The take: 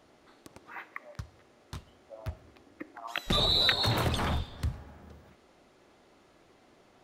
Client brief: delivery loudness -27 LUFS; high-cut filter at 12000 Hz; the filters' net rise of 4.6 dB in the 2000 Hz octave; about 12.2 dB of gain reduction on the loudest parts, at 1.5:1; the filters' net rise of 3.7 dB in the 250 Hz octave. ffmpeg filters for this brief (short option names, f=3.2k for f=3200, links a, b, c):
-af "lowpass=12k,equalizer=f=250:t=o:g=5,equalizer=f=2k:t=o:g=5.5,acompressor=threshold=-53dB:ratio=1.5,volume=12.5dB"